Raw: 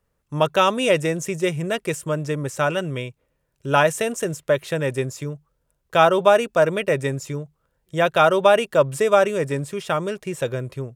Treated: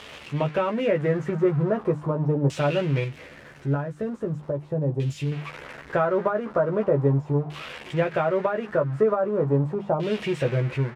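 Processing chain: zero-crossing glitches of -9.5 dBFS; LFO low-pass saw down 0.4 Hz 770–3100 Hz; compression 5:1, threshold -16 dBFS, peak gain reduction 9 dB; tilt shelf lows +9 dB, about 810 Hz; hum notches 50/100/150/200/250/300 Hz; doubling 14 ms -4.5 dB; level rider gain up to 4.5 dB; 3.04–5.32 s: peaking EQ 1.1 kHz -10 dB 2.9 oct; trim -8 dB

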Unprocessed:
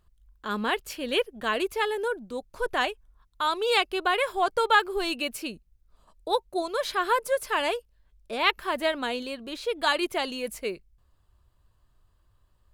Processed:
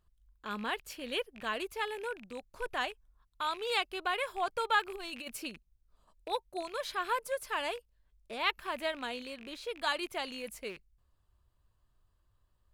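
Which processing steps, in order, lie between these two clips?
rattle on loud lows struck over -48 dBFS, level -30 dBFS; dynamic bell 370 Hz, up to -4 dB, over -38 dBFS, Q 1.2; 4.87–5.49 s: compressor with a negative ratio -32 dBFS, ratio -0.5; trim -7.5 dB

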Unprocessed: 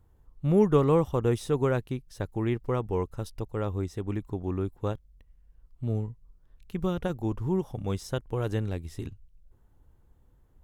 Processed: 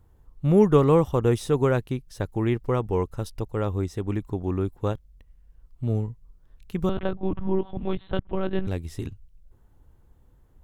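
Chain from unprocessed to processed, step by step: 6.89–8.67 s: monotone LPC vocoder at 8 kHz 190 Hz; trim +4 dB

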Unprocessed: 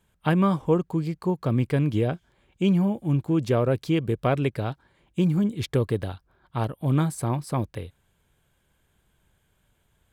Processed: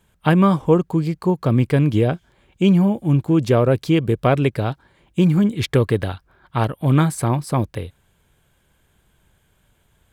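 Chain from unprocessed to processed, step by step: 5.22–7.28 s: peaking EQ 1.9 kHz +4.5 dB 1.5 oct; trim +6.5 dB

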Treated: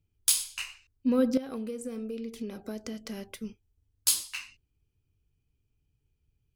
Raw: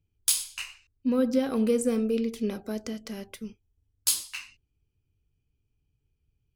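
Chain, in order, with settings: 1.37–3.39 s: compression 12:1, threshold -33 dBFS, peak gain reduction 14 dB

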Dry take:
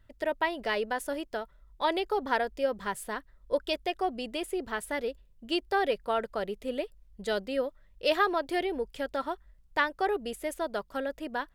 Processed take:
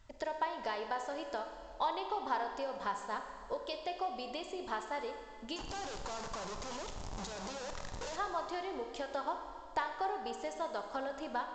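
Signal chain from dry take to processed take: 5.56–8.16 s: one-bit comparator; tone controls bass +2 dB, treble +13 dB; compression 6:1, threshold -38 dBFS, peak gain reduction 17 dB; peaking EQ 920 Hz +12.5 dB 1.1 oct; flutter echo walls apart 8.5 m, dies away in 0.2 s; Schroeder reverb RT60 2.1 s, combs from 30 ms, DRR 6 dB; trim -3.5 dB; A-law 128 kbps 16 kHz

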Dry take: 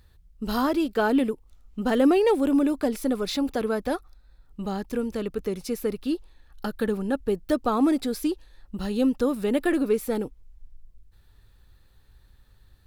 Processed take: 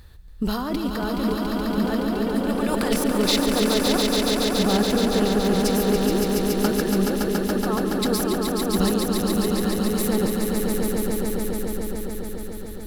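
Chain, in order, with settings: 2.48–2.93 s: spectral peaks clipped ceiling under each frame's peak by 21 dB; compressor with a negative ratio -30 dBFS, ratio -1; 8.88–9.89 s: robot voice 106 Hz; echo with a slow build-up 141 ms, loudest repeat 5, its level -5 dB; trim +4 dB

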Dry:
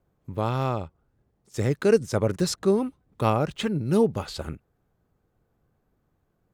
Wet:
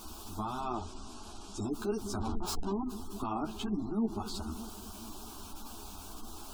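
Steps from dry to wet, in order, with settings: peaking EQ 500 Hz -12 dB 0.33 oct; added noise pink -40 dBFS; 0.66–1.58 s: low-pass 8.7 kHz 12 dB/octave; 2.18–2.72 s: Schmitt trigger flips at -29 dBFS; static phaser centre 520 Hz, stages 6; feedback echo behind a low-pass 205 ms, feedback 70%, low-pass 440 Hz, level -14 dB; spectral gate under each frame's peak -30 dB strong; 3.45–4.26 s: treble shelf 6 kHz -8 dB; peak limiter -23 dBFS, peak gain reduction 8 dB; three-phase chorus

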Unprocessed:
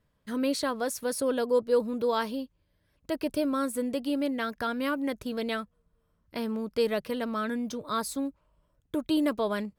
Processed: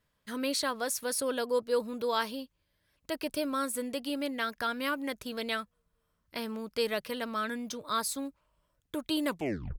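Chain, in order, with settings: tape stop on the ending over 0.52 s; tilt shelf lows -5 dB, about 860 Hz; trim -2 dB

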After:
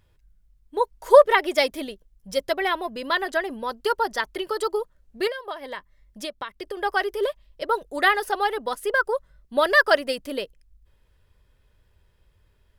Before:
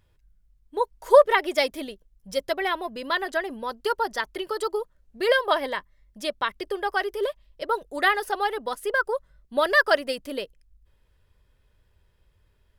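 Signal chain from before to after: 5.27–6.77 s: compression 16:1, threshold -31 dBFS, peak gain reduction 16.5 dB; trim +2 dB

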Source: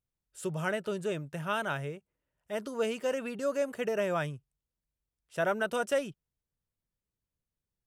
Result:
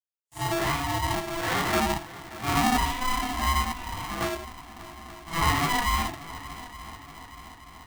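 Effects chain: phase randomisation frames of 200 ms; treble shelf 4.6 kHz -11.5 dB; waveshaping leveller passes 2; 1.73–2.78 s: small resonant body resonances 260/770/1900 Hz, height 14 dB, ringing for 30 ms; 5.40–5.80 s: comb 3.5 ms, depth 89%; treble shelf 9.8 kHz +7 dB; 3.72–4.21 s: feedback comb 140 Hz, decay 0.3 s, harmonics all, mix 80%; on a send: multi-head delay 292 ms, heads second and third, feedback 63%, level -18 dB; on the sum: gate with hold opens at -50 dBFS; polarity switched at an audio rate 500 Hz

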